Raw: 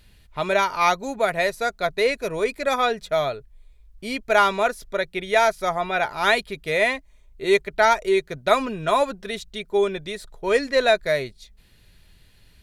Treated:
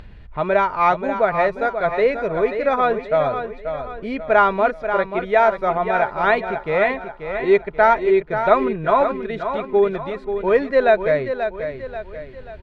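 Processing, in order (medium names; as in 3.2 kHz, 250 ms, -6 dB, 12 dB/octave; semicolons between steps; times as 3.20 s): low-pass 1.6 kHz 12 dB/octave; upward compressor, threshold -35 dBFS; feedback delay 535 ms, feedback 43%, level -8.5 dB; trim +4 dB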